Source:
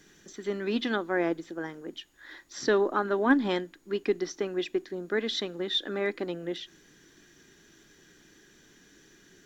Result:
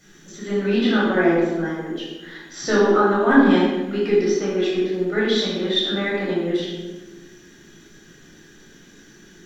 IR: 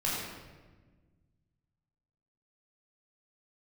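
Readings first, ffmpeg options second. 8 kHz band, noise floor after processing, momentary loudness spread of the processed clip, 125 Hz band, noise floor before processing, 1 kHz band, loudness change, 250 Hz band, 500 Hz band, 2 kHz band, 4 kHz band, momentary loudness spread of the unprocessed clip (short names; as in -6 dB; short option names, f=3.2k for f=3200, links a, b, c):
n/a, -49 dBFS, 16 LU, +13.5 dB, -59 dBFS, +9.5 dB, +10.0 dB, +11.5 dB, +9.5 dB, +9.0 dB, +8.0 dB, 17 LU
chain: -filter_complex "[1:a]atrim=start_sample=2205,asetrate=52920,aresample=44100[a];[0:a][a]afir=irnorm=-1:irlink=0,volume=2.5dB"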